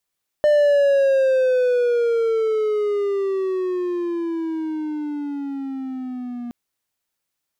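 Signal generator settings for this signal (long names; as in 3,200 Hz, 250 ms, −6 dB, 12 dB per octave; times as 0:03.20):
pitch glide with a swell triangle, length 6.07 s, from 600 Hz, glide −16 semitones, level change −15.5 dB, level −10 dB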